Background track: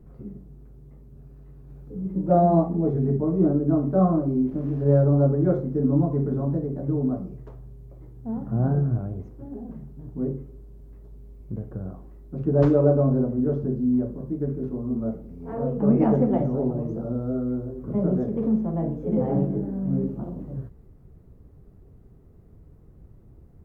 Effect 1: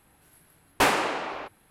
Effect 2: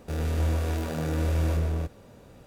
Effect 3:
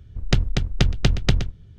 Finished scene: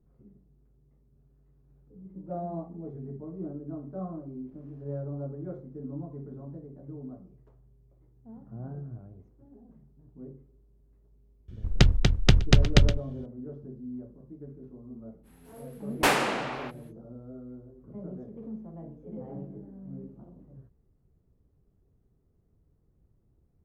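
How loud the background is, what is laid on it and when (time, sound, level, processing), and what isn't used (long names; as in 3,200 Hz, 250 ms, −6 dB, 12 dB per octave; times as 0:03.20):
background track −17 dB
0:11.48: mix in 3
0:15.23: mix in 1 −1 dB, fades 0.05 s + parametric band 1,000 Hz −2 dB
not used: 2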